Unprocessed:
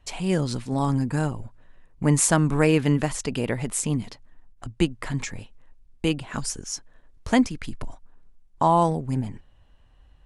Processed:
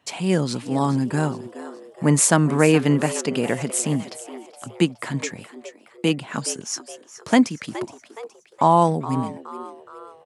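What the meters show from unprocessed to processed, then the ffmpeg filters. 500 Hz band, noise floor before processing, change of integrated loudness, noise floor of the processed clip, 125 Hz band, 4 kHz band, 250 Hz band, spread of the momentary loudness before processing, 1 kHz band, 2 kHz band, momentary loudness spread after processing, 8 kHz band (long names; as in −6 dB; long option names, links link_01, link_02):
+4.0 dB, −56 dBFS, +3.0 dB, −53 dBFS, +1.0 dB, +3.5 dB, +3.5 dB, 19 LU, +3.5 dB, +3.5 dB, 22 LU, +3.5 dB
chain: -filter_complex "[0:a]highpass=frequency=140:width=0.5412,highpass=frequency=140:width=1.3066,asplit=2[link_01][link_02];[link_02]asplit=4[link_03][link_04][link_05][link_06];[link_03]adelay=419,afreqshift=110,volume=-15dB[link_07];[link_04]adelay=838,afreqshift=220,volume=-21.4dB[link_08];[link_05]adelay=1257,afreqshift=330,volume=-27.8dB[link_09];[link_06]adelay=1676,afreqshift=440,volume=-34.1dB[link_10];[link_07][link_08][link_09][link_10]amix=inputs=4:normalize=0[link_11];[link_01][link_11]amix=inputs=2:normalize=0,volume=3.5dB"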